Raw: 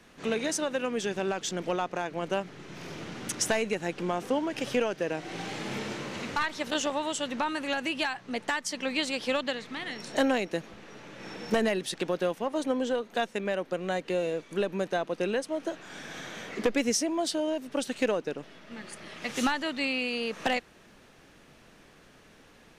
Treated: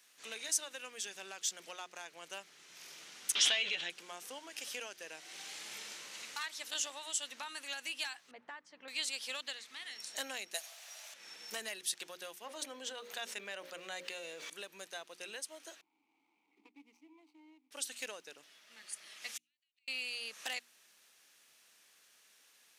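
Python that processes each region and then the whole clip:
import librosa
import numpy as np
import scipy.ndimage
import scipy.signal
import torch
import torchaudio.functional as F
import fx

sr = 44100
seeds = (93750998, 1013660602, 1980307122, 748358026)

y = fx.chain(x, sr, fx.lowpass_res(hz=3300.0, q=6.8),
    fx.doubler(ms=12.0, db=-5),
    fx.pre_swell(db_per_s=30.0), at=(3.35, 3.9))
y = fx.chain(y, sr, fx.lowpass(hz=1200.0, slope=12),
    fx.low_shelf(hz=120.0, db=12.0), at=(8.31, 8.88))
y = fx.chain(y, sr, fx.highpass_res(hz=660.0, q=7.6),
    fx.tilt_eq(slope=4.0), at=(10.54, 11.14))
y = fx.chain(y, sr, fx.peak_eq(hz=11000.0, db=-7.5, octaves=1.6),
    fx.hum_notches(base_hz=60, count=10),
    fx.env_flatten(amount_pct=70), at=(12.44, 14.5))
y = fx.chain(y, sr, fx.median_filter(points=25),
    fx.vowel_filter(vowel='u'), at=(15.81, 17.71))
y = fx.chain(y, sr, fx.ladder_highpass(hz=2200.0, resonance_pct=65),
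    fx.gate_flip(shuts_db=-33.0, range_db=-39), at=(19.37, 19.88))
y = np.diff(y, prepend=0.0)
y = fx.hum_notches(y, sr, base_hz=60, count=6)
y = y * 10.0 ** (1.0 / 20.0)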